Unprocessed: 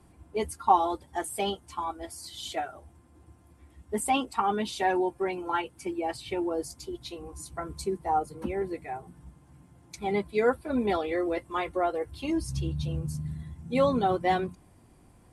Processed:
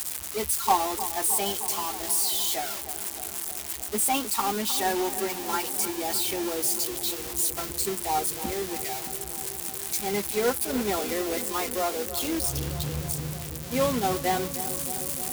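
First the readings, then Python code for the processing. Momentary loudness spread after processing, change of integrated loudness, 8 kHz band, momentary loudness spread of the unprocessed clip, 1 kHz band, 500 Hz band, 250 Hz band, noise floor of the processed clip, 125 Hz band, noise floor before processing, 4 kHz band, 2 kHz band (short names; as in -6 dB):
8 LU, +3.5 dB, +16.0 dB, 13 LU, -0.5 dB, -0.5 dB, -0.5 dB, -36 dBFS, -0.5 dB, -58 dBFS, +8.5 dB, +2.0 dB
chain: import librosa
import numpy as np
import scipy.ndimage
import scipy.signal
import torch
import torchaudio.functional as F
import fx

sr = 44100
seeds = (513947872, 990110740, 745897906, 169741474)

y = x + 0.5 * 10.0 ** (-18.5 / 20.0) * np.diff(np.sign(x), prepend=np.sign(x[:1]))
y = fx.quant_companded(y, sr, bits=4)
y = fx.echo_filtered(y, sr, ms=309, feedback_pct=85, hz=1500.0, wet_db=-11.5)
y = F.gain(torch.from_numpy(y), -1.5).numpy()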